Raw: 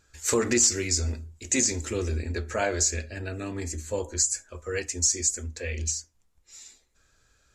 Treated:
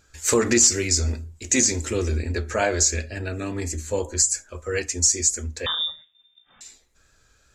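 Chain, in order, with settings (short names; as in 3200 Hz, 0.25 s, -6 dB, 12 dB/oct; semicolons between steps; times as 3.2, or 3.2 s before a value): wow and flutter 28 cents; 5.66–6.61 inverted band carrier 3600 Hz; gain +4.5 dB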